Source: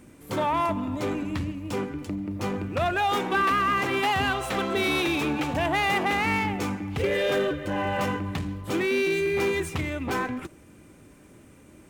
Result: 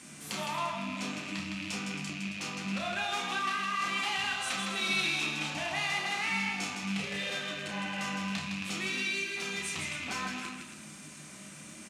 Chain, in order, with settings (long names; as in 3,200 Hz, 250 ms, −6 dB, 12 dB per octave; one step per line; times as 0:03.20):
loose part that buzzes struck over −37 dBFS, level −28 dBFS
downward compressor 3 to 1, threshold −42 dBFS, peak gain reduction 15.5 dB
meter weighting curve ITU-R 468
loudspeakers that aren't time-aligned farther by 11 metres −5 dB, 55 metres −5 dB, 93 metres −10 dB
on a send at −3 dB: convolution reverb RT60 0.70 s, pre-delay 3 ms